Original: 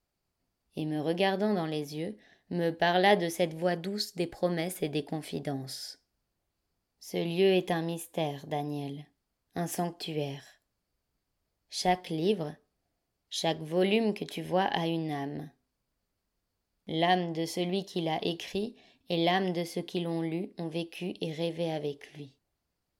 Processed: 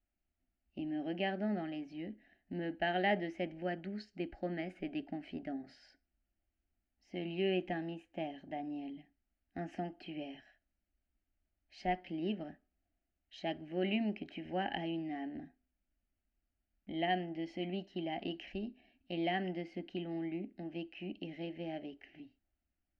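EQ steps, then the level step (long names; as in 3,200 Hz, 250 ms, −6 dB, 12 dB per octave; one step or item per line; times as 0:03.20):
transistor ladder low-pass 3,300 Hz, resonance 80%
low-shelf EQ 280 Hz +11.5 dB
phaser with its sweep stopped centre 690 Hz, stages 8
+3.0 dB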